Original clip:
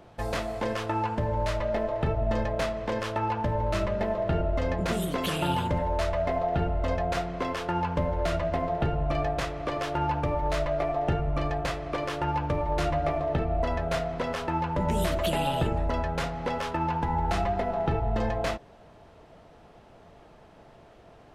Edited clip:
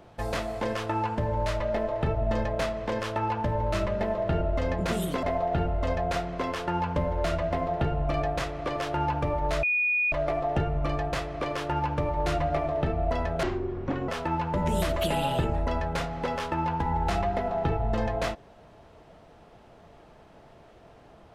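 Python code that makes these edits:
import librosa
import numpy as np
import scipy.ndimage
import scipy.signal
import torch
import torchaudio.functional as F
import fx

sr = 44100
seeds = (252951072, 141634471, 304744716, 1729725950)

y = fx.edit(x, sr, fx.cut(start_s=5.23, length_s=1.01),
    fx.insert_tone(at_s=10.64, length_s=0.49, hz=2460.0, db=-22.0),
    fx.speed_span(start_s=13.95, length_s=0.36, speed=0.55), tone=tone)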